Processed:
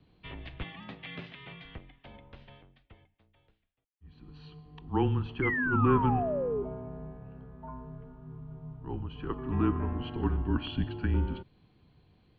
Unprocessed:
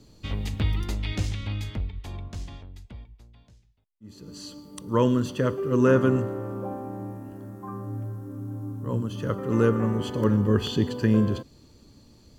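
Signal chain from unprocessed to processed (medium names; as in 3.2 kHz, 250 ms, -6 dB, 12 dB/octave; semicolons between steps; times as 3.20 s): mistuned SSB -140 Hz 180–3500 Hz; 0.64–1.65 s: high-pass 110 Hz 24 dB/octave; 5.42–6.63 s: painted sound fall 390–2200 Hz -26 dBFS; trim -5 dB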